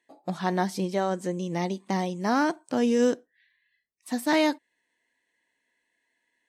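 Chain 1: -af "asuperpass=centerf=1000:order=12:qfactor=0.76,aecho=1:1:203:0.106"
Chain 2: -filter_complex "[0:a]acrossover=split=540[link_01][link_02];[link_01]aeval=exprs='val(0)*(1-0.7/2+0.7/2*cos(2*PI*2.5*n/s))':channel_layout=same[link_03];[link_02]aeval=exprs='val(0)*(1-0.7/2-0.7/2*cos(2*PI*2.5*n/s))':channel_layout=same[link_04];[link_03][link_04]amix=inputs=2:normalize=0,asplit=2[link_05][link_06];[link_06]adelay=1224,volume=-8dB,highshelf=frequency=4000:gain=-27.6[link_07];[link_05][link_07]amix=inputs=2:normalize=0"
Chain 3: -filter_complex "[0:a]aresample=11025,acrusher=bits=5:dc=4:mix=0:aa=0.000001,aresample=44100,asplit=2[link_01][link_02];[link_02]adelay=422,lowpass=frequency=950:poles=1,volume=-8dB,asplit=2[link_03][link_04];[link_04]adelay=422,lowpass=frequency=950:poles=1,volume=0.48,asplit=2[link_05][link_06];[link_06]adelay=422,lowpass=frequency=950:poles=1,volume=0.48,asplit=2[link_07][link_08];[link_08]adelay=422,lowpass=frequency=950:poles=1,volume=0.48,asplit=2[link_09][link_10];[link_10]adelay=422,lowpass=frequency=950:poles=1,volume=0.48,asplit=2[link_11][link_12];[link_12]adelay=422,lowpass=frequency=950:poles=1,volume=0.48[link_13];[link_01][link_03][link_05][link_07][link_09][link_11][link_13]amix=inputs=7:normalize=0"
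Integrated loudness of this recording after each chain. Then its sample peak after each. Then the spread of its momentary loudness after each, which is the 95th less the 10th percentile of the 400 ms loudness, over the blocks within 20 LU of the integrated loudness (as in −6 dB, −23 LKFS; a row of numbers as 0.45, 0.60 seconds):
−32.0, −31.0, −26.5 LKFS; −15.5, −14.5, −9.5 dBFS; 14, 13, 16 LU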